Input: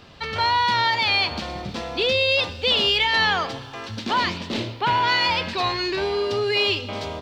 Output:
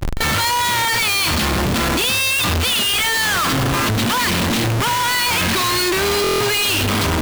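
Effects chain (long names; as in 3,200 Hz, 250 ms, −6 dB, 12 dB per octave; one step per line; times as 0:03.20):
log-companded quantiser 6 bits
flat-topped bell 600 Hz −15 dB 1.2 octaves
comparator with hysteresis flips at −39.5 dBFS
on a send: backwards echo 37 ms −20.5 dB
on the sum: buffer that repeats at 0:06.22, samples 1,024, times 7
level +7 dB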